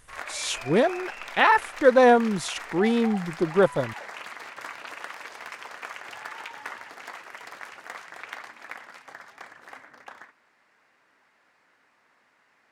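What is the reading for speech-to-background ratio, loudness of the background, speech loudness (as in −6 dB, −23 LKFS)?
16.5 dB, −39.0 LKFS, −22.5 LKFS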